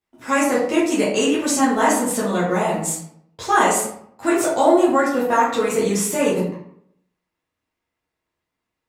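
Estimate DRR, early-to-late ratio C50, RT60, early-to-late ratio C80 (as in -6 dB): -8.5 dB, 3.0 dB, 0.65 s, 7.0 dB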